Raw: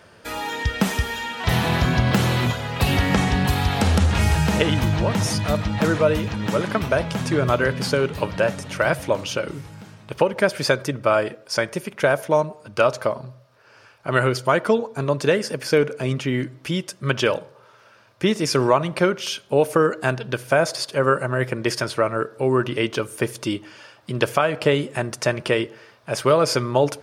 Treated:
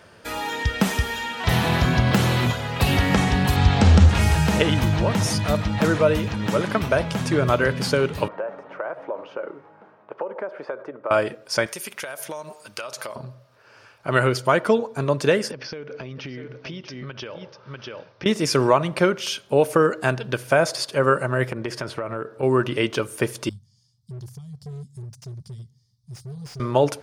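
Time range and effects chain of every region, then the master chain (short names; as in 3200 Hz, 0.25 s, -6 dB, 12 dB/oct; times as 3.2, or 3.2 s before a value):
3.56–4.09 LPF 7600 Hz 24 dB/oct + low shelf 230 Hz +6.5 dB
8.28–11.11 compressor 10:1, threshold -22 dBFS + Butterworth band-pass 710 Hz, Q 0.74
11.66–13.16 tilt +3.5 dB/oct + de-hum 71.01 Hz, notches 2 + compressor 16:1, threshold -28 dBFS
15.51–18.26 echo 0.644 s -12.5 dB + compressor 20:1, threshold -30 dBFS + steep low-pass 6000 Hz 96 dB/oct
21.52–22.43 high shelf 3200 Hz -10 dB + compressor 12:1, threshold -23 dBFS
23.49–26.6 inverse Chebyshev band-stop 290–2800 Hz + hard clip -31 dBFS + tone controls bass -2 dB, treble -14 dB
whole clip: dry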